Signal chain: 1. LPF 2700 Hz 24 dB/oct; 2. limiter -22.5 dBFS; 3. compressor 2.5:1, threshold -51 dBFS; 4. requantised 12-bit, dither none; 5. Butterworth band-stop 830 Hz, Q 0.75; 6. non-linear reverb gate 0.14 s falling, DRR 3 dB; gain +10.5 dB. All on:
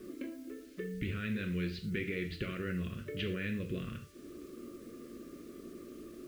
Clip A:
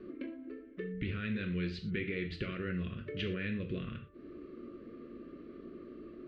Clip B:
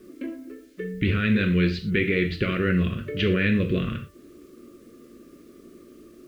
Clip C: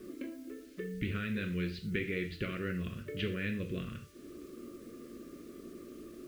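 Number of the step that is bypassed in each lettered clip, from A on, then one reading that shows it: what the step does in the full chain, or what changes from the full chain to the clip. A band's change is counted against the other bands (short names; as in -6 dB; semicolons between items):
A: 4, distortion -28 dB; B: 3, mean gain reduction 7.5 dB; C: 2, crest factor change +3.0 dB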